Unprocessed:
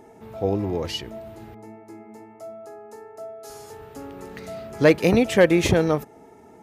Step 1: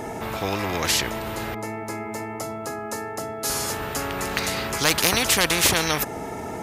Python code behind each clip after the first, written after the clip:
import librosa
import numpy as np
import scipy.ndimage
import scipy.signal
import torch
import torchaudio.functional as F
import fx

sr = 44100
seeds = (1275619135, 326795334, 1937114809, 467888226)

y = fx.spectral_comp(x, sr, ratio=4.0)
y = y * 10.0 ** (3.5 / 20.0)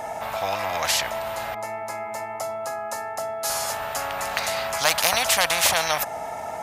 y = fx.low_shelf_res(x, sr, hz=500.0, db=-9.0, q=3.0)
y = y * 10.0 ** (-1.0 / 20.0)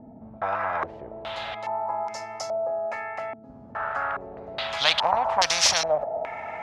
y = fx.filter_held_lowpass(x, sr, hz=2.4, low_hz=250.0, high_hz=5500.0)
y = y * 10.0 ** (-4.5 / 20.0)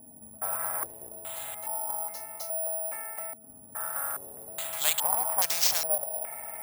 y = (np.kron(x[::4], np.eye(4)[0]) * 4)[:len(x)]
y = y * 10.0 ** (-10.5 / 20.0)